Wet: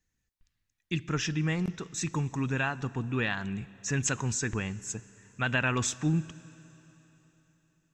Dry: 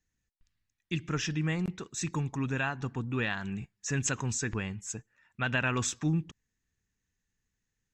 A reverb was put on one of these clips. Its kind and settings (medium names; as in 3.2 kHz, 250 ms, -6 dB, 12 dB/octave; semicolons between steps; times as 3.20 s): Schroeder reverb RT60 3.7 s, combs from 31 ms, DRR 19.5 dB; trim +1.5 dB